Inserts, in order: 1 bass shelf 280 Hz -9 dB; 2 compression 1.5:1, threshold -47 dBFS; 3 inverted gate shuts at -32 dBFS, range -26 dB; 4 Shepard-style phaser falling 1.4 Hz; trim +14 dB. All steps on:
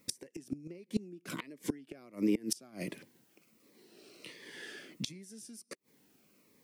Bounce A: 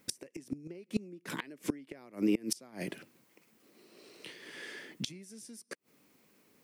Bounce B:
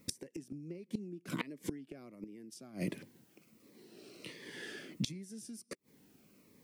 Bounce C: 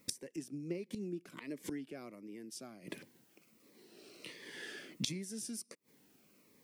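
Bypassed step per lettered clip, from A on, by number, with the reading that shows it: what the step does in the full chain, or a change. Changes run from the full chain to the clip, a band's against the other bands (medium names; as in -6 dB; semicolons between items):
4, 1 kHz band +2.0 dB; 1, 125 Hz band +5.0 dB; 2, mean gain reduction 6.0 dB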